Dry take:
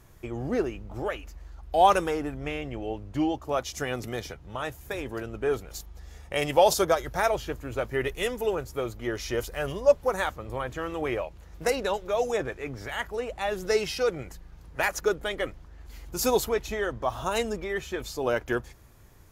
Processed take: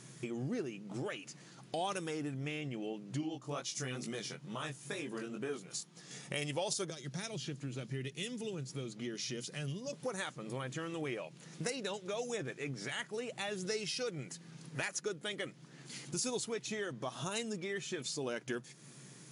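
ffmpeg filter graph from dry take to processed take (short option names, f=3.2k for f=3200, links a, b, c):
-filter_complex "[0:a]asettb=1/sr,asplit=3[a][b][c];[a]atrim=end=3.214[d];[b]atrim=start=3.21:end=6.11,asetpts=PTS-STARTPTS,afade=t=in:d=0.004:c=qsin,afade=t=out:st=2.896:d=0.004:c=qsin,flanger=delay=17.5:depth=5.9:speed=2.2,equalizer=f=1.1k:t=o:w=0.43:g=4[e];[c]atrim=start=6.106[f];[d][e]acrossfade=d=0.004:c1=hsin:c2=qsin[g];[g][f]acrossfade=d=0.004:c1=qsin:c2=hsin,asettb=1/sr,asplit=3[h][i][j];[h]atrim=end=6.904[k];[i]atrim=start=6.9:end=9.93,asetpts=PTS-STARTPTS,afade=t=in:d=0.004:c=qsin,afade=t=out:st=3.026:d=0.004:c=qsin,equalizer=f=10k:t=o:w=1.3:g=-8.5,acrossover=split=290|3000[l][m][n];[m]acompressor=threshold=-51dB:ratio=2:attack=3.2:release=140:knee=2.83:detection=peak[o];[l][o][n]amix=inputs=3:normalize=0[p];[j]atrim=start=9.926[q];[k][p]acrossfade=d=0.004:c1=hsin:c2=qsin[r];[r][q]acrossfade=d=0.004:c1=qsin:c2=hsin,afftfilt=real='re*between(b*sr/4096,120,11000)':imag='im*between(b*sr/4096,120,11000)':win_size=4096:overlap=0.75,equalizer=f=810:t=o:w=2.7:g=-14.5,acompressor=threshold=-51dB:ratio=3,volume=11dB"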